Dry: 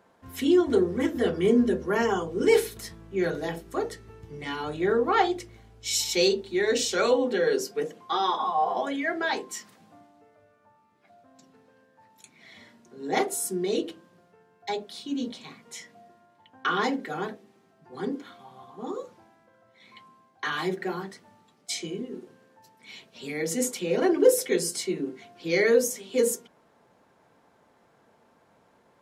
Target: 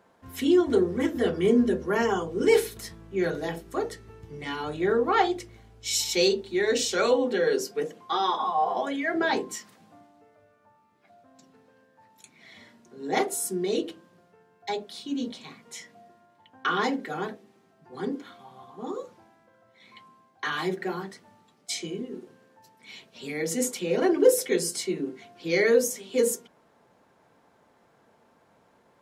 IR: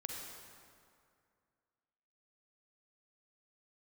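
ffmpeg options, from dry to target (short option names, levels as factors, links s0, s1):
-filter_complex "[0:a]asettb=1/sr,asplit=3[s0][s1][s2];[s0]atrim=end=9.144[s3];[s1]atrim=start=9.14:end=9.56,asetpts=PTS-STARTPTS,afade=t=in:d=0.004:c=qsin,afade=t=out:st=0.416:d=0.004:c=qsin,lowshelf=f=430:g=10.5[s4];[s2]atrim=start=9.556[s5];[s3][s4]acrossfade=d=0.004:c1=hsin:c2=qsin[s6];[s6][s5]acrossfade=d=0.004:c1=qsin:c2=hsin"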